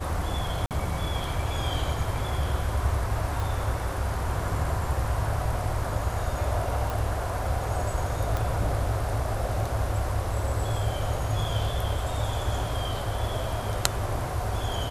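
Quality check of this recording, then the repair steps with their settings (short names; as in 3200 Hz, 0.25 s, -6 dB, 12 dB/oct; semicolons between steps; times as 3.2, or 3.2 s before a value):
0.66–0.71 gap 48 ms
3.4 pop
6.9 pop
8.37 pop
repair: de-click; interpolate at 0.66, 48 ms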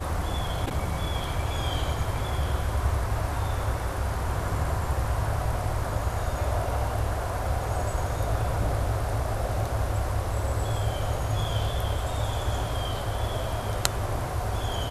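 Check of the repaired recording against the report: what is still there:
none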